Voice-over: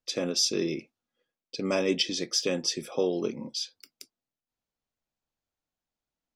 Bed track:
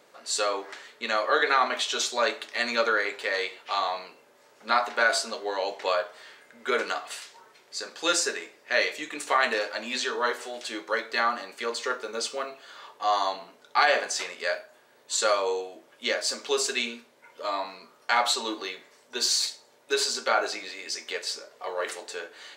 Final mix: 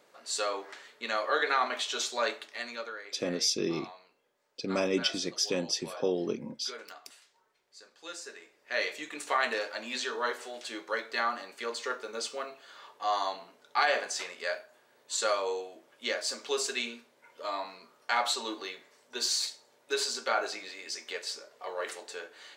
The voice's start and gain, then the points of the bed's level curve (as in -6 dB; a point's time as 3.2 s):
3.05 s, -2.5 dB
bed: 2.33 s -5 dB
3.01 s -18.5 dB
8.17 s -18.5 dB
8.88 s -5 dB